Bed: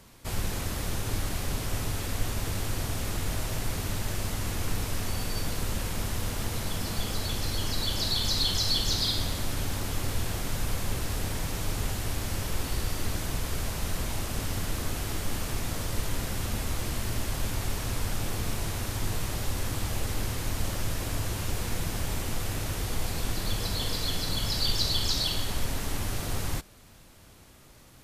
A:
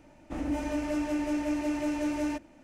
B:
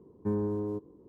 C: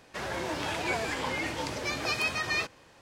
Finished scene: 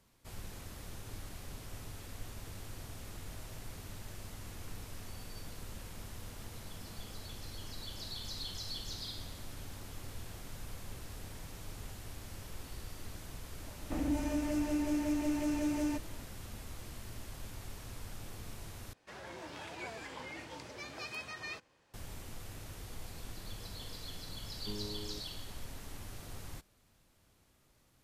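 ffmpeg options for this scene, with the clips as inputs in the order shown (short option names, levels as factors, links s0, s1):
-filter_complex "[0:a]volume=0.168[s0];[1:a]acrossover=split=300|4700[s1][s2][s3];[s2]acompressor=threshold=0.00794:ratio=3:attack=31:release=309:knee=2.83:detection=peak[s4];[s1][s4][s3]amix=inputs=3:normalize=0[s5];[s0]asplit=2[s6][s7];[s6]atrim=end=18.934[s8];[3:a]atrim=end=3.01,asetpts=PTS-STARTPTS,volume=0.211[s9];[s7]atrim=start=21.936[s10];[s5]atrim=end=2.63,asetpts=PTS-STARTPTS,afade=t=in:d=0.004:c=hsin,afade=t=out:st=2.626:d=0.004:c=hsin,adelay=13600[s11];[2:a]atrim=end=1.08,asetpts=PTS-STARTPTS,volume=0.2,afade=t=in:d=0.004:c=hsin,afade=t=out:st=1.076:d=0.004:c=hsin,adelay=24410[s12];[s8][s9]acrossfade=d=0.004:c1=hsin:c2=hsin[s13];[s13][s10]acrossfade=d=0.004:c1=hsin:c2=hsin[s14];[s14][s11][s12]amix=inputs=3:normalize=0"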